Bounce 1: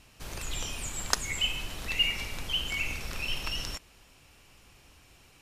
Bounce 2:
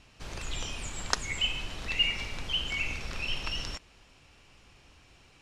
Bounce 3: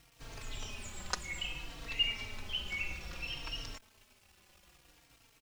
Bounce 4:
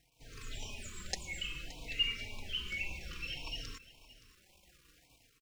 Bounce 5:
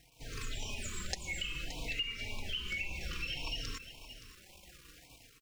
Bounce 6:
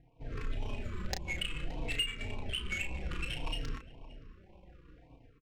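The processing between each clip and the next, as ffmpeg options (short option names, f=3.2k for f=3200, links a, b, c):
-af "lowpass=6.3k"
-filter_complex "[0:a]acrusher=bits=8:mix=0:aa=0.000001,asplit=2[a][b];[b]adelay=3.8,afreqshift=-0.6[c];[a][c]amix=inputs=2:normalize=1,volume=-4dB"
-af "dynaudnorm=f=120:g=5:m=7dB,aecho=1:1:571:0.126,afftfilt=real='re*(1-between(b*sr/1024,680*pow(1600/680,0.5+0.5*sin(2*PI*1.8*pts/sr))/1.41,680*pow(1600/680,0.5+0.5*sin(2*PI*1.8*pts/sr))*1.41))':imag='im*(1-between(b*sr/1024,680*pow(1600/680,0.5+0.5*sin(2*PI*1.8*pts/sr))/1.41,680*pow(1600/680,0.5+0.5*sin(2*PI*1.8*pts/sr))*1.41))':win_size=1024:overlap=0.75,volume=-8dB"
-af "acompressor=threshold=-43dB:ratio=5,volume=8dB"
-filter_complex "[0:a]aeval=exprs='0.15*sin(PI/2*1.41*val(0)/0.15)':c=same,adynamicsmooth=sensitivity=3:basefreq=850,asplit=2[a][b];[b]adelay=33,volume=-6.5dB[c];[a][c]amix=inputs=2:normalize=0,volume=-2.5dB"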